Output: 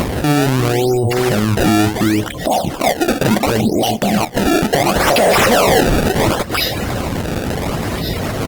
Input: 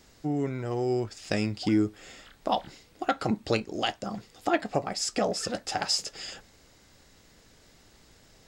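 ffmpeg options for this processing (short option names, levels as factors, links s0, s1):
-filter_complex "[0:a]firequalizer=gain_entry='entry(430,0);entry(720,3);entry(1100,-12);entry(1700,-20);entry(3000,2);entry(10000,3)':delay=0.05:min_phase=1,aecho=1:1:343:0.224,asettb=1/sr,asplit=3[s0][s1][s2];[s0]atrim=end=5.074[s3];[s1]atrim=start=5.07:end=5.81,asetpts=PTS-STARTPTS,afade=t=in:d=0.004:c=qsin,afade=t=out:st=0.736:d=0.004:c=qsin,asplit=2[s4][s5];[s5]highpass=f=720:p=1,volume=22.4,asoftclip=type=tanh:threshold=0.188[s6];[s4][s6]amix=inputs=2:normalize=0,lowpass=f=4300:p=1,volume=0.501[s7];[s2]atrim=start=5.806[s8];[s3][s7]acrossfade=d=0.004:c1=hsin:c2=qsin[s9];[s9][s8]acrossfade=d=0.004:c1=qsin:c2=hsin,lowshelf=f=110:g=5.5,acompressor=mode=upward:threshold=0.0282:ratio=2.5,highpass=82,acontrast=32,afftdn=nr=23:nf=-42,acrusher=samples=24:mix=1:aa=0.000001:lfo=1:lforange=38.4:lforate=0.71,alimiter=level_in=29.9:limit=0.891:release=50:level=0:latency=1,volume=0.473" -ar 48000 -c:a libopus -b:a 24k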